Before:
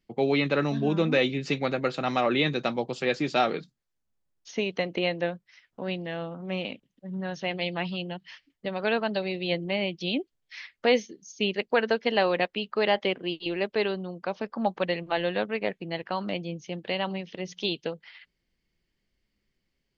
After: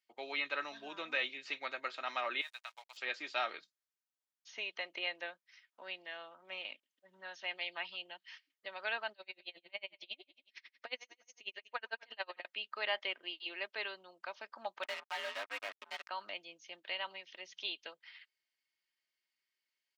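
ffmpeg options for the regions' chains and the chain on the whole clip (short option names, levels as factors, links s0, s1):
-filter_complex "[0:a]asettb=1/sr,asplit=3[s0][s1][s2];[s0]atrim=end=2.414[s3];[s1]atrim=start=2.41:end=2.97,asetpts=PTS-STARTPTS,afade=t=in:d=0.004:c=qsin,afade=t=out:st=0.556:d=0.004:c=qsin,highpass=f=750:w=0.5412,highpass=f=750:w=1.3066,acompressor=threshold=0.02:ratio=3:attack=3.2:release=140:knee=1:detection=peak,aeval=exprs='sgn(val(0))*max(abs(val(0))-0.00501,0)':c=same[s4];[s2]atrim=start=2.966[s5];[s3][s4]acrossfade=d=0.004:c1=hsin:c2=qsin[s6];[s6][s5]acrossfade=d=0.004:c1=qsin:c2=hsin,asettb=1/sr,asplit=3[s7][s8][s9];[s7]atrim=end=9.124[s10];[s8]atrim=start=9.12:end=12.45,asetpts=PTS-STARTPTS,afade=t=in:d=0.004:c=qsin,afade=t=out:st=3.326:d=0.004:c=qsin,aecho=1:1:121|242|363|484|605:0.126|0.073|0.0424|0.0246|0.0142,atrim=end_sample=146853,aeval=exprs='val(0)*pow(10,-36*(0.5-0.5*cos(2*PI*11*n/s))/20)':c=same[s11];[s9]atrim=start=12.446[s12];[s10][s11]acrossfade=d=0.004:c1=hsin:c2=qsin[s13];[s13][s12]acrossfade=d=0.004:c1=qsin:c2=hsin,asettb=1/sr,asplit=3[s14][s15][s16];[s14]atrim=end=14.834[s17];[s15]atrim=start=14.83:end=16.09,asetpts=PTS-STARTPTS,afade=t=in:d=0.004:c=qsin,afade=t=out:st=1.256:d=0.004:c=qsin,afreqshift=66,asoftclip=type=hard:threshold=0.075,acrusher=bits=4:mix=0:aa=0.5[s18];[s16]atrim=start=16.086[s19];[s17][s18]acrossfade=d=0.004:c1=hsin:c2=qsin[s20];[s20][s19]acrossfade=d=0.004:c1=qsin:c2=hsin,highpass=1100,acrossover=split=4100[s21][s22];[s22]acompressor=threshold=0.00224:ratio=4:attack=1:release=60[s23];[s21][s23]amix=inputs=2:normalize=0,aecho=1:1:3.2:0.34,volume=0.501"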